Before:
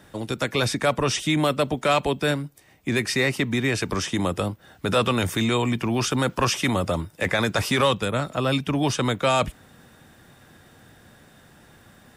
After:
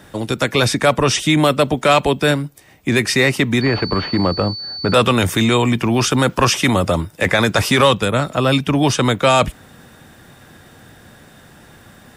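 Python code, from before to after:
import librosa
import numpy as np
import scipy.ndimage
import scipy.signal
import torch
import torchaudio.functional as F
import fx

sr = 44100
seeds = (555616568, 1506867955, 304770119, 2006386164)

y = fx.pwm(x, sr, carrier_hz=4500.0, at=(3.61, 4.94))
y = F.gain(torch.from_numpy(y), 7.5).numpy()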